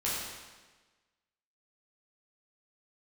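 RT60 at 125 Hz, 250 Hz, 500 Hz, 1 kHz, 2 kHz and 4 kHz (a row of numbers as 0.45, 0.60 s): 1.3, 1.3, 1.3, 1.3, 1.3, 1.2 s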